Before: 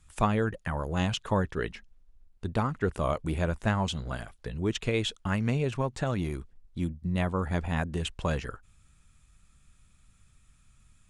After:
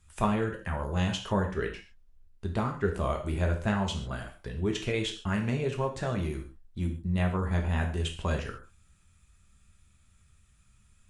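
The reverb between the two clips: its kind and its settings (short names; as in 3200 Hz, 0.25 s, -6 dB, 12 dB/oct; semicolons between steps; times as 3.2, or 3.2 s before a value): non-linear reverb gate 0.17 s falling, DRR 2 dB; gain -3 dB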